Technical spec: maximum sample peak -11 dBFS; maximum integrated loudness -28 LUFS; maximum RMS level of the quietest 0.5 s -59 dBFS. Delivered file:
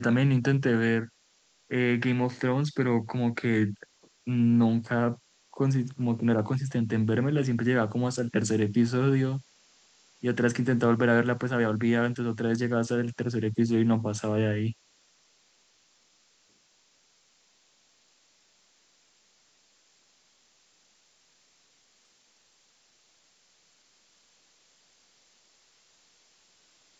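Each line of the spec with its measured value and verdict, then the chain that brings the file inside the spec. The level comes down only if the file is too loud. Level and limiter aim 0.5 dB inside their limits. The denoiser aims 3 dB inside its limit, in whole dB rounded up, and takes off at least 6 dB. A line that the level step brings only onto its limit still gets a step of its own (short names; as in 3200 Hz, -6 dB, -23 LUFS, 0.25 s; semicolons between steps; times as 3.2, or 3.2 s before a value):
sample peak -10.0 dBFS: fail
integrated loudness -26.5 LUFS: fail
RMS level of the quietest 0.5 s -66 dBFS: OK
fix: gain -2 dB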